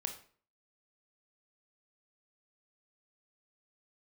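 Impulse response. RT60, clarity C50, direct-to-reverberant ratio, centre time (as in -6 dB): 0.45 s, 10.0 dB, 5.0 dB, 13 ms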